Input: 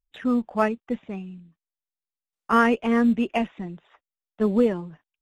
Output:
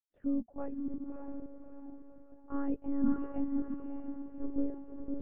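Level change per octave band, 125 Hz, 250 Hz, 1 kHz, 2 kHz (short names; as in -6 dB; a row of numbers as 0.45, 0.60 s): -16.0 dB, -10.0 dB, -23.5 dB, under -30 dB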